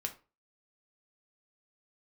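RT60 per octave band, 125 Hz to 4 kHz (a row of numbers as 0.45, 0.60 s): 0.35, 0.30, 0.35, 0.30, 0.30, 0.25 s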